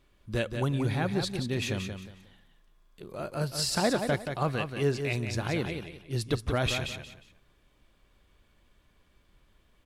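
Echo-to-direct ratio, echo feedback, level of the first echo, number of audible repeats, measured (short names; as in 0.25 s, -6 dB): -6.5 dB, 27%, -7.0 dB, 3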